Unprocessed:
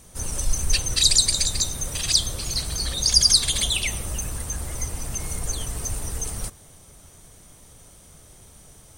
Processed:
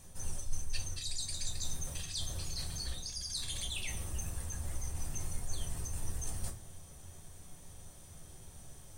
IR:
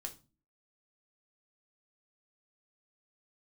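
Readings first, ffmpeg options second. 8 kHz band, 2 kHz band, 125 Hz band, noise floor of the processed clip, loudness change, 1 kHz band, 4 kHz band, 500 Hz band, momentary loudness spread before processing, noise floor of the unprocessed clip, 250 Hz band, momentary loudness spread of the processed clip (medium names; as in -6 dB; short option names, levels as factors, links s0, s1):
-17.5 dB, -15.5 dB, -10.0 dB, -53 dBFS, -18.0 dB, -13.0 dB, -20.0 dB, -14.0 dB, 14 LU, -50 dBFS, -12.0 dB, 16 LU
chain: -filter_complex "[0:a]equalizer=f=83:t=o:w=0.34:g=8.5,areverse,acompressor=threshold=0.0316:ratio=10,areverse[s0];[1:a]atrim=start_sample=2205[s1];[s0][s1]afir=irnorm=-1:irlink=0,volume=0.708"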